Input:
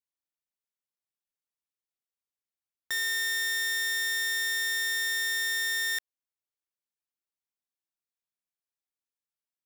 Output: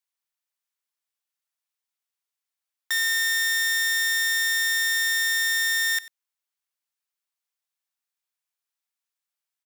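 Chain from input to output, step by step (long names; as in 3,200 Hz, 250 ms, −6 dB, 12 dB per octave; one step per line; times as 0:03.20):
high-pass filter 800 Hz 12 dB per octave
on a send: single-tap delay 93 ms −19 dB
on the sum: level +6 dB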